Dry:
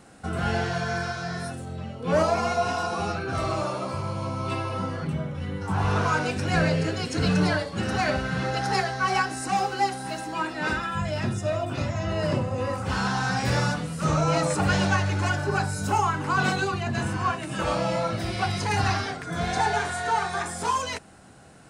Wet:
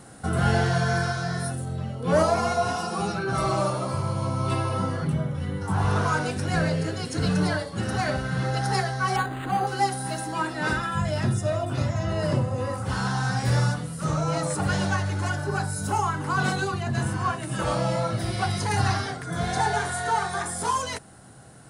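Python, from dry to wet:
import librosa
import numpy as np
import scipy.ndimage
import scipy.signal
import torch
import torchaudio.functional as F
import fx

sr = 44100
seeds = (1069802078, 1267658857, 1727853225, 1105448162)

y = fx.comb(x, sr, ms=5.2, depth=0.65, at=(2.75, 3.7))
y = fx.resample_linear(y, sr, factor=8, at=(9.16, 9.67))
y = fx.graphic_eq_31(y, sr, hz=(125, 2500, 10000), db=(8, -6, 10))
y = fx.rider(y, sr, range_db=10, speed_s=2.0)
y = y * 10.0 ** (-1.0 / 20.0)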